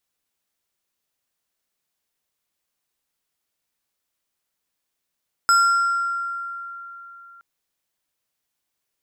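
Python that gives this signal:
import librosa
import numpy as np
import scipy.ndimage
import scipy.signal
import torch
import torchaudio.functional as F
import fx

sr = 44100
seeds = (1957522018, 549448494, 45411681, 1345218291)

y = fx.fm2(sr, length_s=1.92, level_db=-11.5, carrier_hz=1380.0, ratio=4.72, index=0.6, index_s=1.87, decay_s=3.49, shape='exponential')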